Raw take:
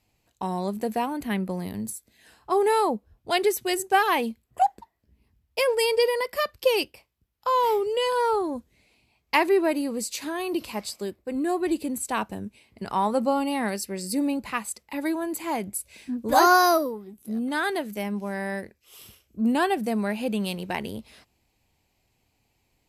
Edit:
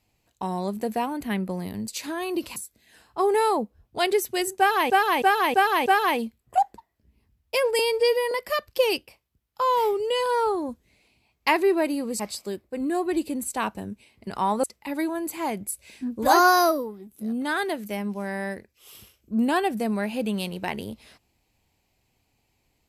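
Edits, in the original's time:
0:03.90–0:04.22: repeat, 5 plays
0:05.83–0:06.18: time-stretch 1.5×
0:10.06–0:10.74: move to 0:01.88
0:13.18–0:14.70: remove

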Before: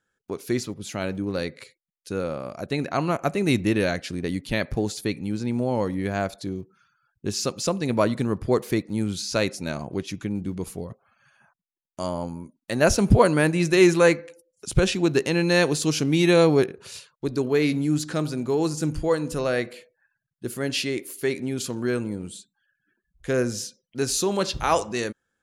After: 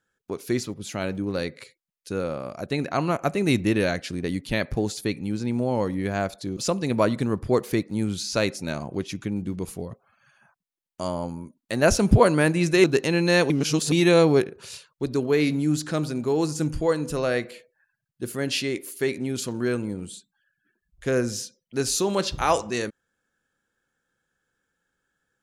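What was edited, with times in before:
0:06.57–0:07.56: remove
0:13.83–0:15.06: remove
0:15.72–0:16.14: reverse

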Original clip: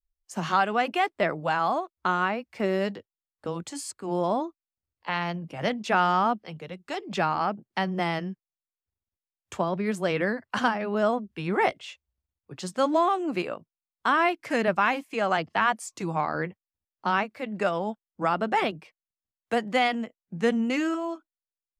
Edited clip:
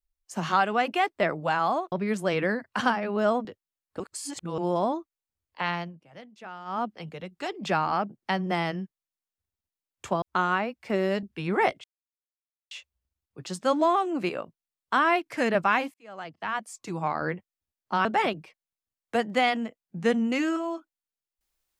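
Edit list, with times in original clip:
0:01.92–0:02.93: swap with 0:09.70–0:11.23
0:03.48–0:04.06: reverse
0:05.19–0:06.42: duck −19 dB, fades 0.29 s
0:11.84: splice in silence 0.87 s
0:15.07–0:16.40: fade in
0:17.18–0:18.43: remove

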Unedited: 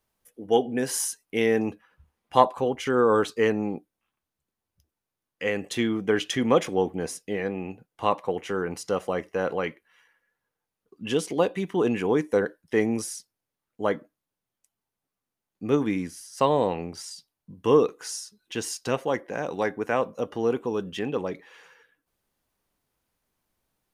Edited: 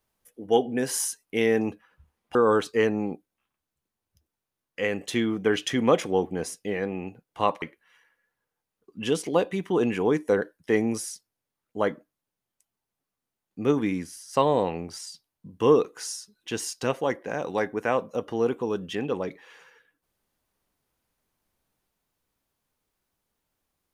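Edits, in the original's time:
0:02.35–0:02.98: remove
0:08.25–0:09.66: remove

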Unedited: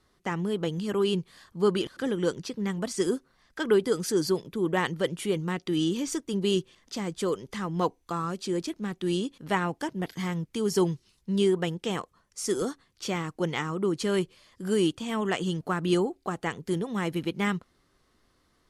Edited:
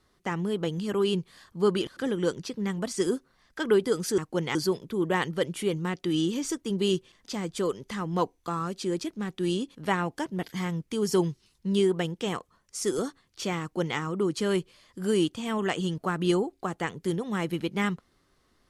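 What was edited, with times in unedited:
0:13.24–0:13.61: duplicate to 0:04.18

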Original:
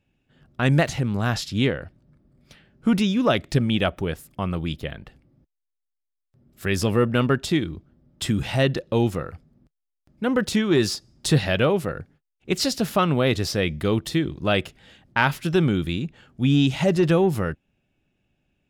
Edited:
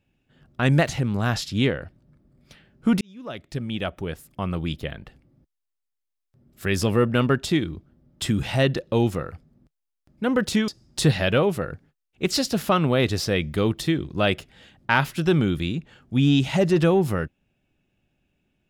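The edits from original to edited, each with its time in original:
0:03.01–0:04.65: fade in
0:10.68–0:10.95: remove

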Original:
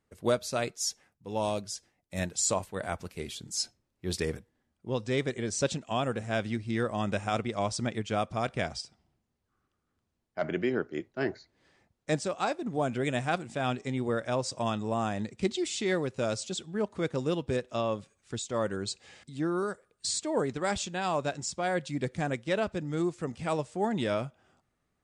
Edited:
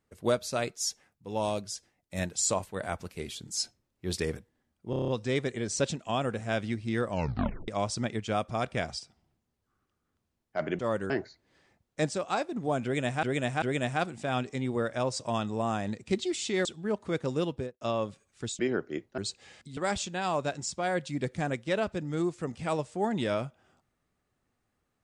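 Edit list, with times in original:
0:04.90: stutter 0.03 s, 7 plays
0:06.91: tape stop 0.59 s
0:10.61–0:11.20: swap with 0:18.49–0:18.80
0:12.94–0:13.33: repeat, 3 plays
0:15.97–0:16.55: remove
0:17.38–0:17.71: fade out and dull
0:19.39–0:20.57: remove

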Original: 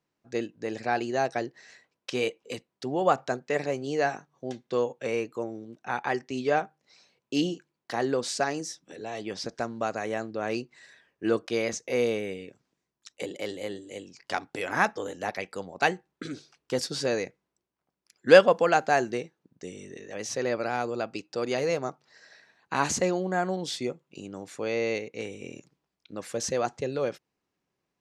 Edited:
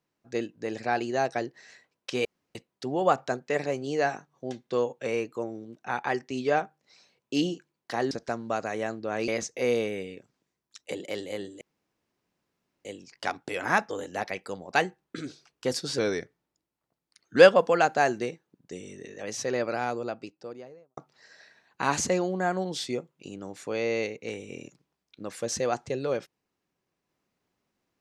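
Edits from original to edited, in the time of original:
0:02.25–0:02.55: fill with room tone
0:08.11–0:09.42: remove
0:10.59–0:11.59: remove
0:13.92: splice in room tone 1.24 s
0:17.05–0:18.28: play speed 89%
0:20.63–0:21.89: fade out and dull

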